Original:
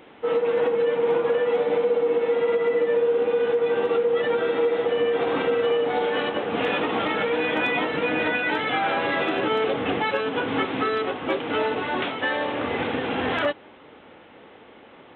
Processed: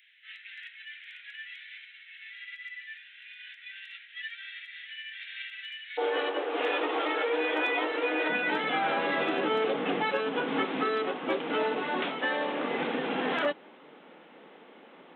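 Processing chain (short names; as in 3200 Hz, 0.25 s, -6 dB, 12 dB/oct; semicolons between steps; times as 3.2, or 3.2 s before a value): steep high-pass 1700 Hz 72 dB/oct, from 5.97 s 290 Hz, from 8.28 s 150 Hz; gain -4.5 dB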